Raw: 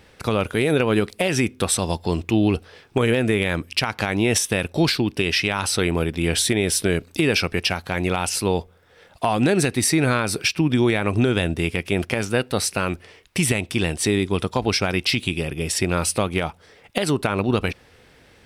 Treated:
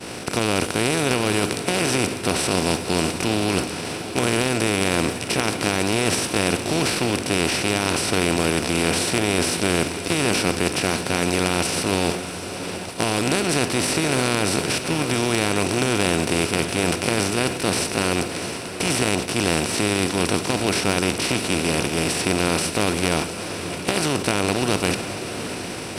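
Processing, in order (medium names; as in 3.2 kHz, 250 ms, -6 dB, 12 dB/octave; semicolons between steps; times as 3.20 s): spectral levelling over time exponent 0.2; expander -9 dBFS; tempo 0.71×; on a send: echo that smears into a reverb 682 ms, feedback 48%, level -11 dB; on the sum: trim -9.5 dB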